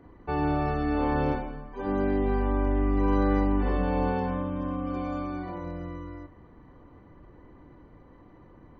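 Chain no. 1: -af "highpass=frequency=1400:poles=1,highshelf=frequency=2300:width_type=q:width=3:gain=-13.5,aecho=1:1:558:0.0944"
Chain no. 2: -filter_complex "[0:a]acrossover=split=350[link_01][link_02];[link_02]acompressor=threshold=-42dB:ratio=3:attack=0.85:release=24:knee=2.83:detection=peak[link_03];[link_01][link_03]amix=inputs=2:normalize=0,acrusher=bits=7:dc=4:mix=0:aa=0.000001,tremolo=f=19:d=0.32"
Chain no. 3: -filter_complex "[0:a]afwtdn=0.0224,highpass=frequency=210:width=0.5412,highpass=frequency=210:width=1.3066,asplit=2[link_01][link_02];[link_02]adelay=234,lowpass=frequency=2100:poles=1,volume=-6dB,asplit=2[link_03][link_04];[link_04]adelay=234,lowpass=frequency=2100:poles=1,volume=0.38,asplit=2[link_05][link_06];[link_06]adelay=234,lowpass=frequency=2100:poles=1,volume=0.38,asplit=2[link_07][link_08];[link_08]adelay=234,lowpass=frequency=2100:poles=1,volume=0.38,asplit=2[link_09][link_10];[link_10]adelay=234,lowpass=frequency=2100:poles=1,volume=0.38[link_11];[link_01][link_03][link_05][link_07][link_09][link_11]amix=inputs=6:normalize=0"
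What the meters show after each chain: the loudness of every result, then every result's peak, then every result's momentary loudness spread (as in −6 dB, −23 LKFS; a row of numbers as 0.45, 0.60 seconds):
−36.0, −32.0, −29.0 LKFS; −21.5, −16.0, −16.0 dBFS; 12, 11, 12 LU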